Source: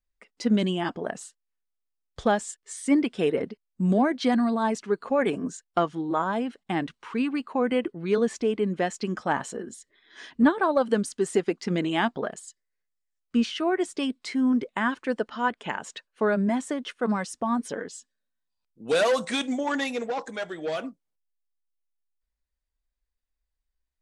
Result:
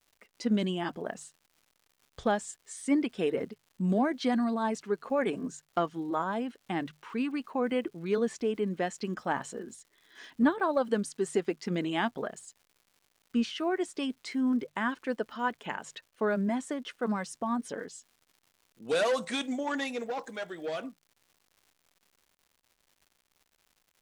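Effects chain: notches 50/100/150 Hz; crackle 240/s -47 dBFS; gain -5 dB

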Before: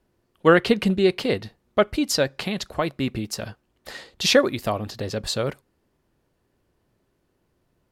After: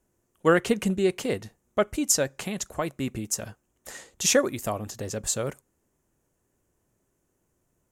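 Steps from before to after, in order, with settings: resonant high shelf 5500 Hz +7.5 dB, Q 3; gain -4.5 dB

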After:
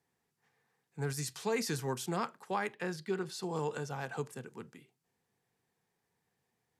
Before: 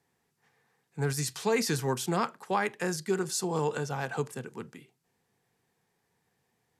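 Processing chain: 2.73–3.43 resonant high shelf 5100 Hz -8 dB, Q 1.5; gain -6 dB

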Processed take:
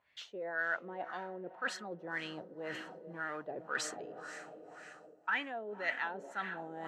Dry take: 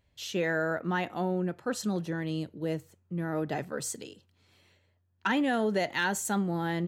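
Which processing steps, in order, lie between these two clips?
Doppler pass-by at 2.22, 12 m/s, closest 12 m; diffused feedback echo 0.488 s, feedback 55%, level -15 dB; in parallel at -3 dB: vocal rider 0.5 s; on the sum: LFO low-pass sine 1.9 Hz 470–2000 Hz; reverse; compressor, threshold -34 dBFS, peak gain reduction 13 dB; reverse; differentiator; gain +18 dB

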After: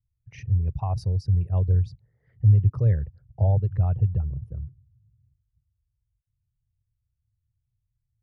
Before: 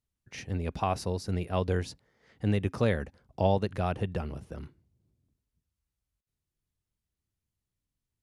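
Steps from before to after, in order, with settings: formant sharpening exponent 2; resonant low shelf 170 Hz +12 dB, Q 3; 1.73–2.74 mismatched tape noise reduction decoder only; gain -5.5 dB

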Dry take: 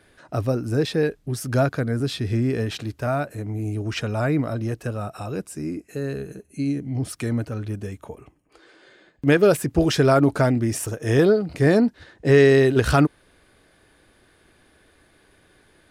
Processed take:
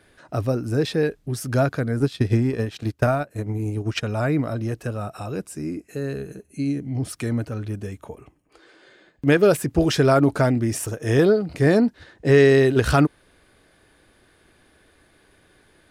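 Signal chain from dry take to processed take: 1.97–4.03 transient shaper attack +10 dB, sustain -11 dB

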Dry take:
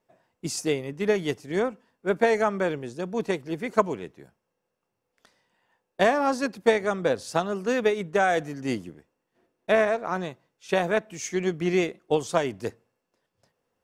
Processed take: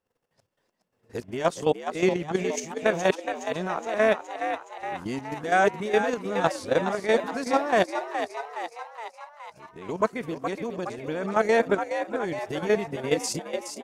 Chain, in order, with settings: whole clip reversed; level quantiser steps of 11 dB; frequency-shifting echo 0.418 s, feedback 59%, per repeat +74 Hz, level -8 dB; gain +3 dB

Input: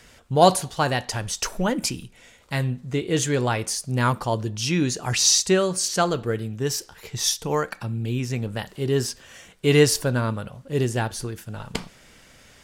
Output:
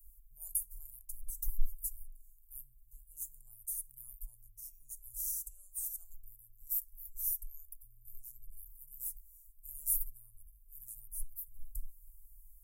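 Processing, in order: inverse Chebyshev band-stop 170–4100 Hz, stop band 70 dB; bell 120 Hz -11.5 dB 2.1 oct; gain +9 dB

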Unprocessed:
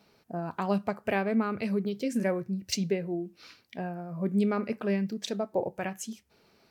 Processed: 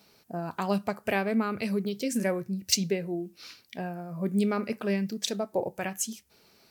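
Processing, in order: high shelf 4200 Hz +12 dB

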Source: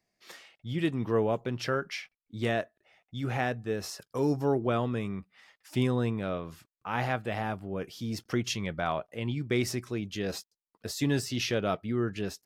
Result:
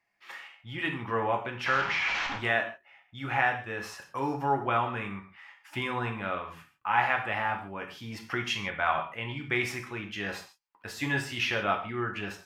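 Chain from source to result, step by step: 1.66–2.38 delta modulation 32 kbps, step -28 dBFS; band shelf 1500 Hz +14 dB 2.3 oct; non-linear reverb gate 0.18 s falling, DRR 2.5 dB; gain -8 dB

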